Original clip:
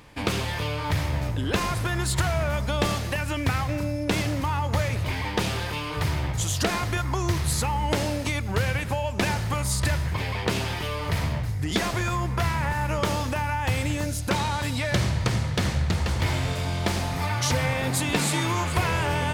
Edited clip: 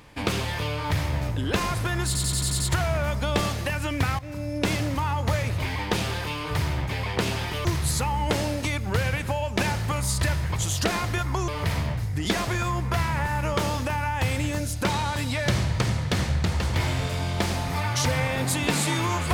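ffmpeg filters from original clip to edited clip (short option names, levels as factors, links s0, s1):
-filter_complex "[0:a]asplit=12[s0][s1][s2][s3][s4][s5][s6][s7][s8][s9][s10][s11];[s0]atrim=end=2.152[s12];[s1]atrim=start=2.058:end=2.152[s13];[s2]atrim=start=2.058:end=2.152[s14];[s3]atrim=start=2.058:end=2.152[s15];[s4]atrim=start=2.058:end=2.152[s16];[s5]atrim=start=2.058:end=2.152[s17];[s6]atrim=start=2.058:end=3.65,asetpts=PTS-STARTPTS,afade=t=out:st=1.588:d=0.004:c=hsin:silence=0.158489[s18];[s7]atrim=start=3.65:end=6.352,asetpts=PTS-STARTPTS,afade=t=in:d=0.4:silence=0.158489[s19];[s8]atrim=start=10.178:end=10.942[s20];[s9]atrim=start=7.268:end=10.182[s21];[s10]atrim=start=6.348:end=7.272[s22];[s11]atrim=start=10.938[s23];[s12][s13]acrossfade=d=0.004:c1=hsin:c2=hsin[s24];[s24][s14]acrossfade=d=0.004:c1=hsin:c2=hsin[s25];[s25][s15]acrossfade=d=0.004:c1=hsin:c2=hsin[s26];[s26][s16]acrossfade=d=0.004:c1=hsin:c2=hsin[s27];[s27][s17]acrossfade=d=0.004:c1=hsin:c2=hsin[s28];[s18][s19]concat=n=2:v=0:a=1[s29];[s28][s29]acrossfade=d=0.004:c1=hsin:c2=hsin[s30];[s30][s20]acrossfade=d=0.004:c1=hsin:c2=hsin[s31];[s31][s21]acrossfade=d=0.004:c1=hsin:c2=hsin[s32];[s32][s22]acrossfade=d=0.004:c1=hsin:c2=hsin[s33];[s33][s23]acrossfade=d=0.004:c1=hsin:c2=hsin"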